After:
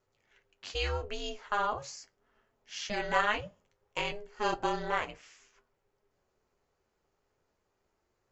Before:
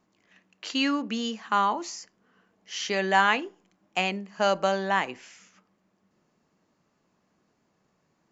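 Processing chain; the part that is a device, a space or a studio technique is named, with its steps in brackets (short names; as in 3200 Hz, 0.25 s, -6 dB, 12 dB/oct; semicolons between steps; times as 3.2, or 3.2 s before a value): alien voice (ring modulator 210 Hz; flange 0.36 Hz, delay 7.9 ms, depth 5.3 ms, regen -45%)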